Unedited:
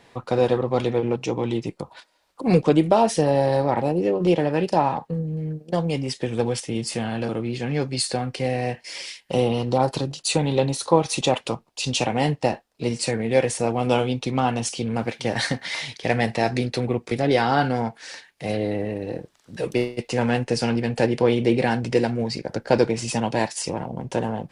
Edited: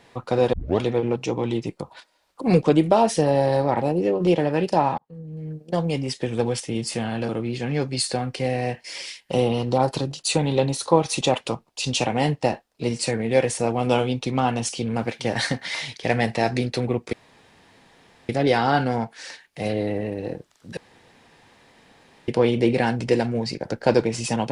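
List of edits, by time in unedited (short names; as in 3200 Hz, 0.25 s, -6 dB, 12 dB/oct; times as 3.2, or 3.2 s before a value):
0.53 tape start 0.27 s
4.98–5.79 fade in linear
17.13 insert room tone 1.16 s
19.61–21.12 room tone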